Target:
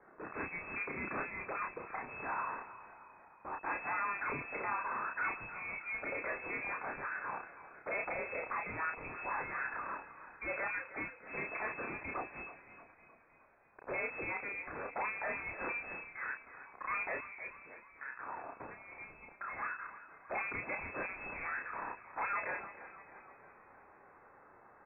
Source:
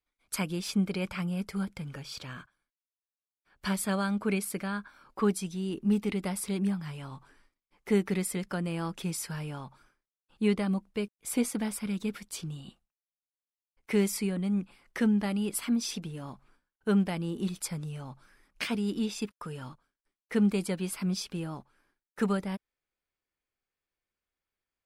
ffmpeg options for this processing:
-filter_complex "[0:a]aeval=exprs='val(0)+0.5*0.00841*sgn(val(0))':c=same,highpass=1.1k,afwtdn=0.00355,asplit=3[a][b][c];[a]afade=t=out:st=17.17:d=0.02[d];[b]acompressor=threshold=-52dB:ratio=16,afade=t=in:st=17.17:d=0.02,afade=t=out:st=19.46:d=0.02[e];[c]afade=t=in:st=19.46:d=0.02[f];[d][e][f]amix=inputs=3:normalize=0,aeval=exprs='(tanh(224*val(0)+0.2)-tanh(0.2))/224':c=same,asplit=2[g][h];[h]adelay=31,volume=-4dB[i];[g][i]amix=inputs=2:normalize=0,asplit=7[j][k][l][m][n][o][p];[k]adelay=313,afreqshift=30,volume=-14dB[q];[l]adelay=626,afreqshift=60,volume=-19.2dB[r];[m]adelay=939,afreqshift=90,volume=-24.4dB[s];[n]adelay=1252,afreqshift=120,volume=-29.6dB[t];[o]adelay=1565,afreqshift=150,volume=-34.8dB[u];[p]adelay=1878,afreqshift=180,volume=-40dB[v];[j][q][r][s][t][u][v]amix=inputs=7:normalize=0,lowpass=f=2.2k:t=q:w=0.5098,lowpass=f=2.2k:t=q:w=0.6013,lowpass=f=2.2k:t=q:w=0.9,lowpass=f=2.2k:t=q:w=2.563,afreqshift=-2600,volume=12.5dB"

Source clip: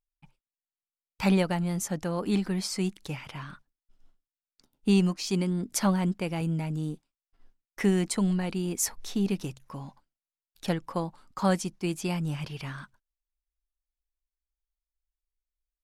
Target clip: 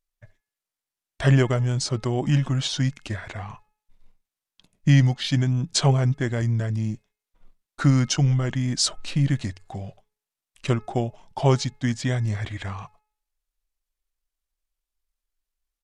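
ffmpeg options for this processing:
-af "asetrate=31183,aresample=44100,atempo=1.41421,bandreject=f=425.5:t=h:w=4,bandreject=f=851:t=h:w=4,bandreject=f=1.2765k:t=h:w=4,bandreject=f=1.702k:t=h:w=4,bandreject=f=2.1275k:t=h:w=4,bandreject=f=2.553k:t=h:w=4,volume=6dB"

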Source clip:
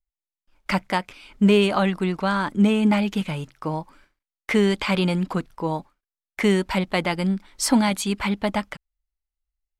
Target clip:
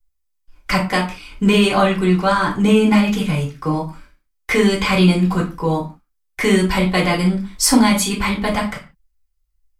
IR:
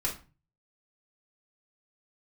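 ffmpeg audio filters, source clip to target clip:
-filter_complex "[0:a]highshelf=f=5.6k:g=7[a];[1:a]atrim=start_sample=2205,afade=t=out:st=0.23:d=0.01,atrim=end_sample=10584[b];[a][b]afir=irnorm=-1:irlink=0,volume=1dB"

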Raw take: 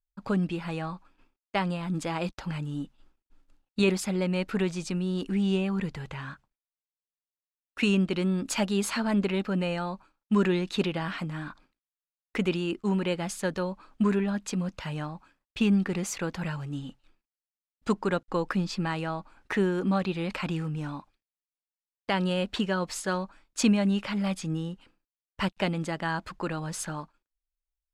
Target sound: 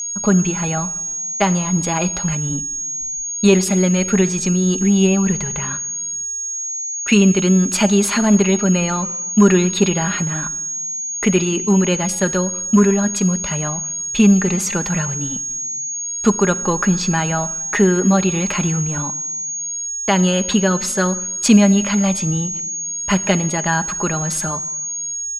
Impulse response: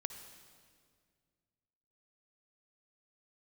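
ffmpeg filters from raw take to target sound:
-filter_complex "[0:a]aecho=1:1:4.9:0.42,aeval=exprs='val(0)+0.0251*sin(2*PI*6600*n/s)':c=same,atempo=1.1,acontrast=58,asplit=2[a][b];[1:a]atrim=start_sample=2205,asetrate=70560,aresample=44100[c];[b][c]afir=irnorm=-1:irlink=0,volume=0dB[d];[a][d]amix=inputs=2:normalize=0"

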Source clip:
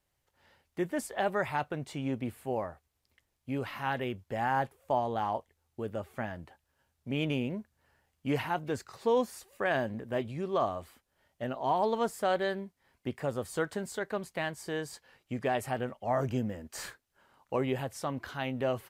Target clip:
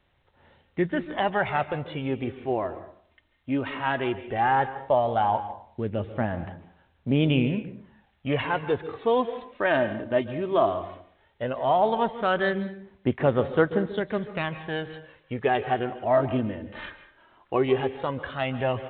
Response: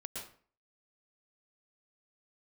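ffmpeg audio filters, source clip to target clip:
-filter_complex "[0:a]aphaser=in_gain=1:out_gain=1:delay=3.3:decay=0.48:speed=0.15:type=sinusoidal,asplit=2[a][b];[1:a]atrim=start_sample=2205,asetrate=35280,aresample=44100[c];[b][c]afir=irnorm=-1:irlink=0,volume=-9dB[d];[a][d]amix=inputs=2:normalize=0,volume=4dB" -ar 8000 -c:a pcm_alaw

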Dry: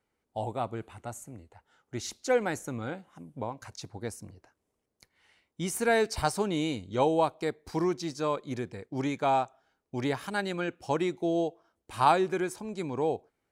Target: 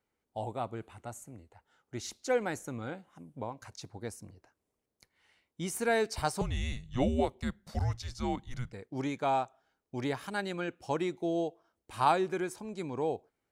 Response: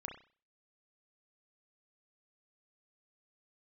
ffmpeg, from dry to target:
-filter_complex "[0:a]asettb=1/sr,asplit=3[a][b][c];[a]atrim=end=6.414[d];[b]atrim=start=6.41:end=8.73,asetpts=PTS-STARTPTS,afade=t=in:d=0.004:c=qsin,afade=t=out:st=2.316:d=0.004:c=qsin,afreqshift=-250[e];[c]atrim=start=8.726[f];[d][e]acrossfade=d=0.004:c1=hsin:c2=qsin[g];[g][f]acrossfade=d=0.004:c1=qsin:c2=hsin,volume=-3.5dB"

